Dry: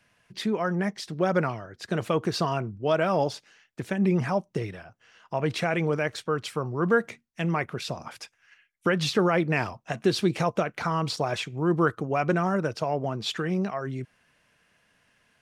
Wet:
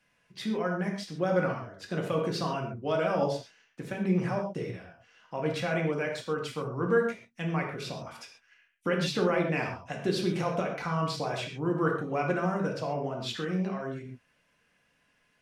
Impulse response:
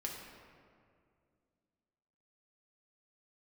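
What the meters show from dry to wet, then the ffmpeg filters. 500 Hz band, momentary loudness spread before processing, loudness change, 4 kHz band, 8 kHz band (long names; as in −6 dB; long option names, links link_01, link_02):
−3.0 dB, 12 LU, −3.5 dB, −4.5 dB, −5.0 dB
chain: -filter_complex "[1:a]atrim=start_sample=2205,afade=type=out:start_time=0.22:duration=0.01,atrim=end_sample=10143,asetrate=52920,aresample=44100[link_01];[0:a][link_01]afir=irnorm=-1:irlink=0,volume=-2dB"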